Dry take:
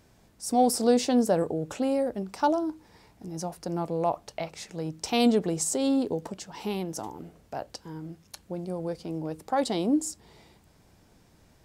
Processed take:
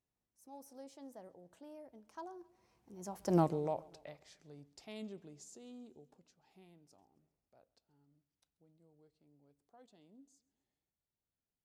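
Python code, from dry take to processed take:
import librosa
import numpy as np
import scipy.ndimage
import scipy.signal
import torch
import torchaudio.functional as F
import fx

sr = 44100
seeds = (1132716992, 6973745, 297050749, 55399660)

y = fx.doppler_pass(x, sr, speed_mps=36, closest_m=2.2, pass_at_s=3.37)
y = fx.echo_feedback(y, sr, ms=134, feedback_pct=55, wet_db=-23.5)
y = F.gain(torch.from_numpy(y), 3.0).numpy()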